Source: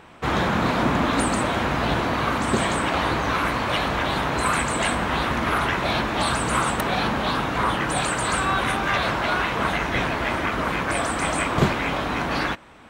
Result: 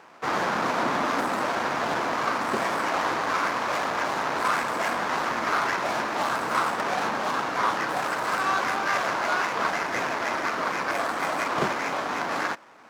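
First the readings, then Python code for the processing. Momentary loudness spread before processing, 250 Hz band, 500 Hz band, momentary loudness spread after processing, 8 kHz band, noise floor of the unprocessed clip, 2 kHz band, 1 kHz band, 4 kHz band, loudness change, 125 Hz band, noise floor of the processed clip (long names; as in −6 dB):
3 LU, −8.5 dB, −3.0 dB, 2 LU, −7.0 dB, −27 dBFS, −2.5 dB, −1.5 dB, −6.5 dB, −3.0 dB, −15.5 dB, −31 dBFS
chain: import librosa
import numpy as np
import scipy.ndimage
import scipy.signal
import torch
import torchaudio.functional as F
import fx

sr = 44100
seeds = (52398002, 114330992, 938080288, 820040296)

y = scipy.ndimage.median_filter(x, 15, mode='constant')
y = fx.weighting(y, sr, curve='A')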